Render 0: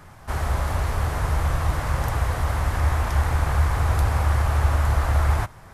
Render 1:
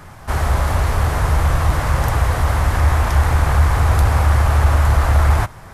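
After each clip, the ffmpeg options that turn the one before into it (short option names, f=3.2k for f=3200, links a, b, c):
-af "acontrast=84"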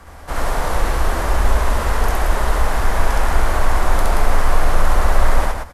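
-filter_complex "[0:a]afreqshift=-91,asplit=2[a][b];[b]aecho=0:1:67.06|177.8:1|0.631[c];[a][c]amix=inputs=2:normalize=0,volume=-3dB"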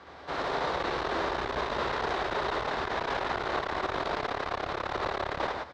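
-af "asoftclip=type=tanh:threshold=-11dB,highpass=160,equalizer=f=210:t=q:w=4:g=-5,equalizer=f=390:t=q:w=4:g=6,equalizer=f=3.8k:t=q:w=4:g=7,lowpass=f=4.9k:w=0.5412,lowpass=f=4.9k:w=1.3066,volume=-5.5dB"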